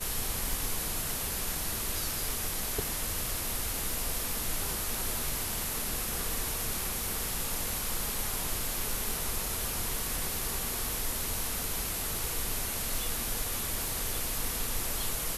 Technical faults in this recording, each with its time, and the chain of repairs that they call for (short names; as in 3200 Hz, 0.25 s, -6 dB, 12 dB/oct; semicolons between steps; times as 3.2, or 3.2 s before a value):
0.53 pop
13.88 pop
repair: de-click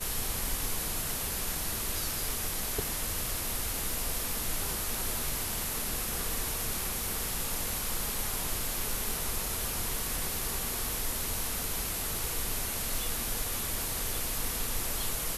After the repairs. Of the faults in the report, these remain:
0.53 pop